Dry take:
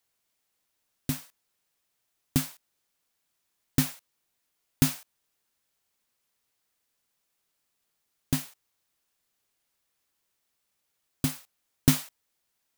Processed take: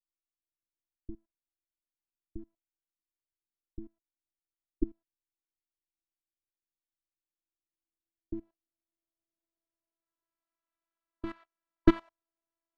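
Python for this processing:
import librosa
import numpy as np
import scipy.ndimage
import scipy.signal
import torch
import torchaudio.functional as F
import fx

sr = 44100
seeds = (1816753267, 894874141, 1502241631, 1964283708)

y = fx.spec_box(x, sr, start_s=10.03, length_s=1.96, low_hz=1000.0, high_hz=4700.0, gain_db=8)
y = fx.level_steps(y, sr, step_db=18)
y = fx.filter_sweep_lowpass(y, sr, from_hz=150.0, to_hz=990.0, start_s=7.2, end_s=10.57, q=0.91)
y = fx.robotise(y, sr, hz=332.0)
y = y * librosa.db_to_amplitude(7.5)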